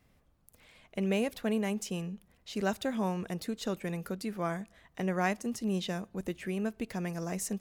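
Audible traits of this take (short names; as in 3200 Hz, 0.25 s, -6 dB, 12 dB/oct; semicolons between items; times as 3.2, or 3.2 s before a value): noise floor -68 dBFS; spectral tilt -5.5 dB/oct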